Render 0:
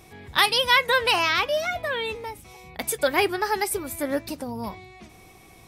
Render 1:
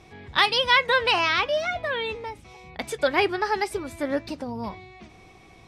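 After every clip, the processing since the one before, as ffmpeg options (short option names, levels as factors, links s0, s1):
-af "lowpass=5100"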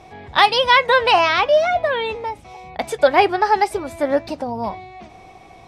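-af "equalizer=f=720:w=1.5:g=10,volume=1.41"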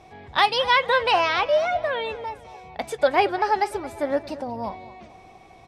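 -filter_complex "[0:a]asplit=2[s0][s1];[s1]adelay=224,lowpass=f=4200:p=1,volume=0.141,asplit=2[s2][s3];[s3]adelay=224,lowpass=f=4200:p=1,volume=0.47,asplit=2[s4][s5];[s5]adelay=224,lowpass=f=4200:p=1,volume=0.47,asplit=2[s6][s7];[s7]adelay=224,lowpass=f=4200:p=1,volume=0.47[s8];[s0][s2][s4][s6][s8]amix=inputs=5:normalize=0,volume=0.531"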